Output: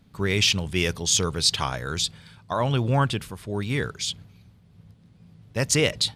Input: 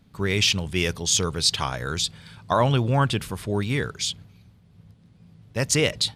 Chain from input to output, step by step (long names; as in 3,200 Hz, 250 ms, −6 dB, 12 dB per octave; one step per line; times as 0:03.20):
0:01.80–0:04.08: shaped tremolo triangle 1.1 Hz, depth 55%